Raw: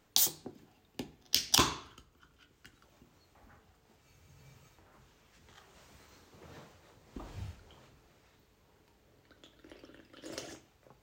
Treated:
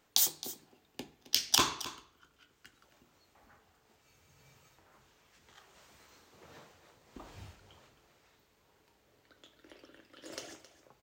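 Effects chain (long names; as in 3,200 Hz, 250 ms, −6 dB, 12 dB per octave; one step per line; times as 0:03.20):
low-shelf EQ 260 Hz −9 dB
on a send: single-tap delay 267 ms −15.5 dB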